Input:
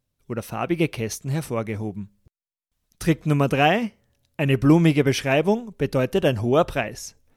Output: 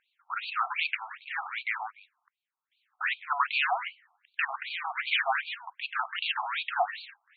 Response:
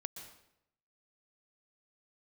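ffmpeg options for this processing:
-filter_complex "[0:a]asplit=2[a][b];[b]highpass=f=720:p=1,volume=30dB,asoftclip=type=tanh:threshold=-4.5dB[c];[a][c]amix=inputs=2:normalize=0,lowpass=f=3.1k:p=1,volume=-6dB,afftfilt=real='re*between(b*sr/1024,940*pow(3300/940,0.5+0.5*sin(2*PI*2.6*pts/sr))/1.41,940*pow(3300/940,0.5+0.5*sin(2*PI*2.6*pts/sr))*1.41)':imag='im*between(b*sr/1024,940*pow(3300/940,0.5+0.5*sin(2*PI*2.6*pts/sr))/1.41,940*pow(3300/940,0.5+0.5*sin(2*PI*2.6*pts/sr))*1.41)':win_size=1024:overlap=0.75,volume=-6.5dB"

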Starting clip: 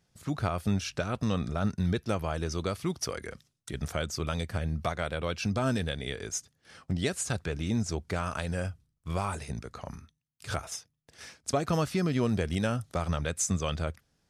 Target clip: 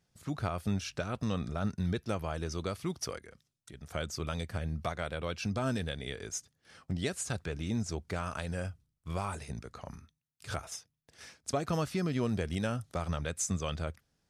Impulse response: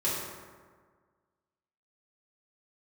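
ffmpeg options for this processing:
-filter_complex "[0:a]asplit=3[a][b][c];[a]afade=t=out:st=3.17:d=0.02[d];[b]acompressor=threshold=-58dB:ratio=1.5,afade=t=in:st=3.17:d=0.02,afade=t=out:st=3.9:d=0.02[e];[c]afade=t=in:st=3.9:d=0.02[f];[d][e][f]amix=inputs=3:normalize=0,volume=-4dB"

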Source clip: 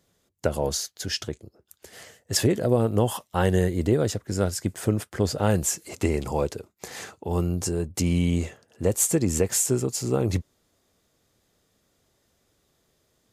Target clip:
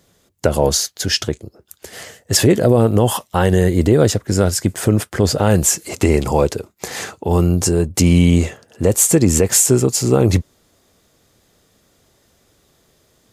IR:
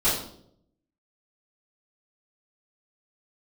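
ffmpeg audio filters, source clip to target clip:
-af "alimiter=level_in=12dB:limit=-1dB:release=50:level=0:latency=1,volume=-1dB"

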